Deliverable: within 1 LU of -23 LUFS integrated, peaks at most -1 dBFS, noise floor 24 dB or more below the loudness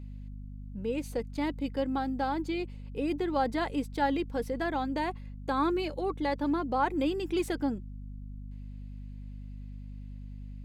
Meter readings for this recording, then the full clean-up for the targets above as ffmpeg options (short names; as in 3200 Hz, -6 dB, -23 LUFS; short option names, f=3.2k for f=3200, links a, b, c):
hum 50 Hz; harmonics up to 250 Hz; hum level -39 dBFS; loudness -31.5 LUFS; peak -17.0 dBFS; loudness target -23.0 LUFS
-> -af "bandreject=f=50:t=h:w=6,bandreject=f=100:t=h:w=6,bandreject=f=150:t=h:w=6,bandreject=f=200:t=h:w=6,bandreject=f=250:t=h:w=6"
-af "volume=8.5dB"